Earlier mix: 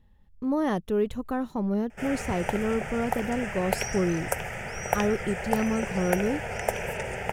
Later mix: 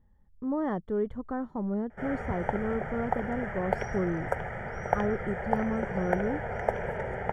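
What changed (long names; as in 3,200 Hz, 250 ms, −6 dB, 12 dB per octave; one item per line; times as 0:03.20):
speech −4.0 dB
master: add Savitzky-Golay smoothing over 41 samples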